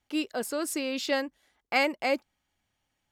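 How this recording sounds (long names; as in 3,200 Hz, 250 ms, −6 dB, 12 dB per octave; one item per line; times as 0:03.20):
background noise floor −81 dBFS
spectral slope −1.5 dB per octave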